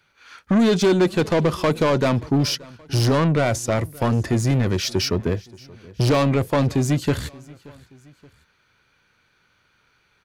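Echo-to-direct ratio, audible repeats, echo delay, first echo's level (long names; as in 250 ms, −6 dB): −22.0 dB, 2, 577 ms, −23.0 dB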